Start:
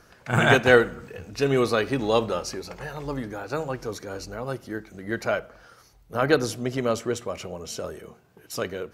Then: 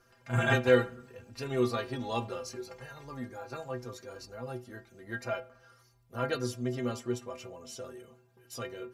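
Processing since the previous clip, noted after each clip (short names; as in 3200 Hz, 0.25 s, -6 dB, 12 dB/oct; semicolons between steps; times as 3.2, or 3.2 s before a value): metallic resonator 120 Hz, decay 0.24 s, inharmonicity 0.008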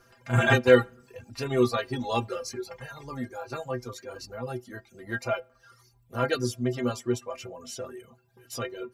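reverb removal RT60 0.64 s; gain +6 dB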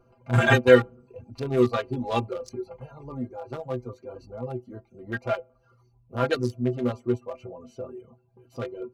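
Wiener smoothing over 25 samples; gain +2.5 dB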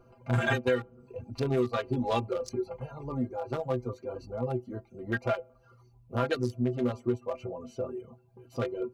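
compressor 6:1, threshold -27 dBFS, peak gain reduction 17 dB; gain +2.5 dB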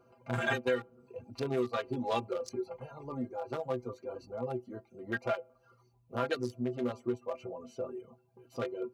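HPF 240 Hz 6 dB/oct; gain -2.5 dB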